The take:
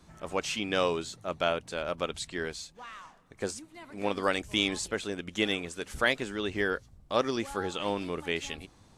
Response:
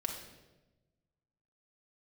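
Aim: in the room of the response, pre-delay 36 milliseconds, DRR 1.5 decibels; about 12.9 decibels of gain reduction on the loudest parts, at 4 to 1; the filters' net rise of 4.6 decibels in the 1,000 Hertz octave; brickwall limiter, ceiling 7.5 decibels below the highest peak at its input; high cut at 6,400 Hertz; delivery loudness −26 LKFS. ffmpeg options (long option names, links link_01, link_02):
-filter_complex "[0:a]lowpass=6400,equalizer=frequency=1000:width_type=o:gain=6,acompressor=threshold=-35dB:ratio=4,alimiter=level_in=3dB:limit=-24dB:level=0:latency=1,volume=-3dB,asplit=2[link_01][link_02];[1:a]atrim=start_sample=2205,adelay=36[link_03];[link_02][link_03]afir=irnorm=-1:irlink=0,volume=-3.5dB[link_04];[link_01][link_04]amix=inputs=2:normalize=0,volume=13dB"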